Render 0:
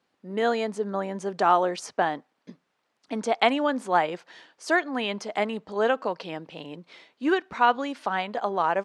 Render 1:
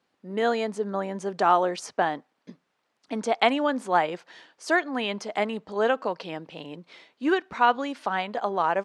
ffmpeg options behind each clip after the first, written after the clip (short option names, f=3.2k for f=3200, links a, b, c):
-af anull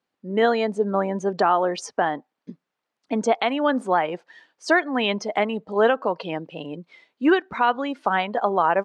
-af "afftdn=nr=14:nf=-40,alimiter=limit=-15dB:level=0:latency=1:release=346,volume=6.5dB"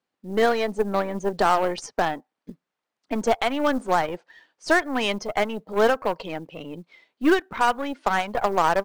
-af "aeval=exprs='0.398*(cos(1*acos(clip(val(0)/0.398,-1,1)))-cos(1*PI/2))+0.0282*(cos(3*acos(clip(val(0)/0.398,-1,1)))-cos(3*PI/2))+0.0224*(cos(4*acos(clip(val(0)/0.398,-1,1)))-cos(4*PI/2))+0.0251*(cos(6*acos(clip(val(0)/0.398,-1,1)))-cos(6*PI/2))+0.0355*(cos(8*acos(clip(val(0)/0.398,-1,1)))-cos(8*PI/2))':c=same,aresample=22050,aresample=44100,acrusher=bits=8:mode=log:mix=0:aa=0.000001"